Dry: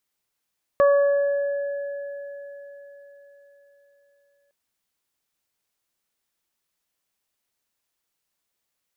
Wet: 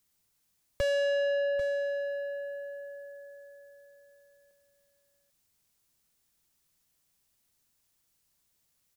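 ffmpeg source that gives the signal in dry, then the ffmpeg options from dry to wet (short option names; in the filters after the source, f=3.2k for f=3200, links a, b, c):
-f lavfi -i "aevalsrc='0.224*pow(10,-3*t/4.26)*sin(2*PI*566*t)+0.0891*pow(10,-3*t/0.96)*sin(2*PI*1132*t)+0.0335*pow(10,-3*t/4.9)*sin(2*PI*1698*t)':d=3.71:s=44100"
-filter_complex "[0:a]bass=f=250:g=11,treble=f=4k:g=6,acrossover=split=100[a][b];[b]asoftclip=type=tanh:threshold=-26.5dB[c];[a][c]amix=inputs=2:normalize=0,aecho=1:1:792:0.251"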